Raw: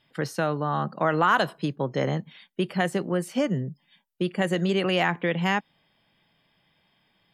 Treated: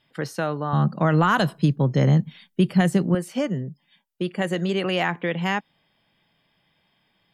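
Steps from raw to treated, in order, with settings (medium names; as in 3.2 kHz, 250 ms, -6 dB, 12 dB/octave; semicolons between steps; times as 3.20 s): 0.73–3.15 s: tone controls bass +14 dB, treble +5 dB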